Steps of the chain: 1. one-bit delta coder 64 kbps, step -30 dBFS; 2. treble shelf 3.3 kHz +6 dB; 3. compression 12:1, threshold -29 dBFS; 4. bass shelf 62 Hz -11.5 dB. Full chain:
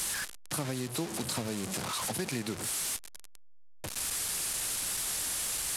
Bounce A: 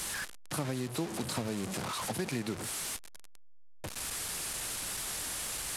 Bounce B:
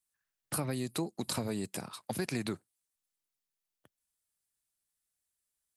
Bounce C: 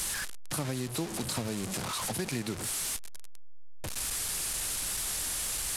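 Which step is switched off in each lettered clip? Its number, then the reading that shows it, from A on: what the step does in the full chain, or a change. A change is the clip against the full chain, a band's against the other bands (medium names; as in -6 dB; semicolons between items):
2, 8 kHz band -4.5 dB; 1, 8 kHz band -11.0 dB; 4, 125 Hz band +2.5 dB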